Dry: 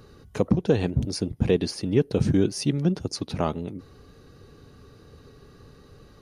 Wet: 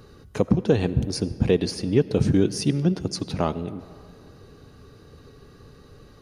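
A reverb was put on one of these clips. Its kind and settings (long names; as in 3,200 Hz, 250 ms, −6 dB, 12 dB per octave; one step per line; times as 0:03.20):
comb and all-pass reverb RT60 2.5 s, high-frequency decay 0.55×, pre-delay 40 ms, DRR 16 dB
level +1.5 dB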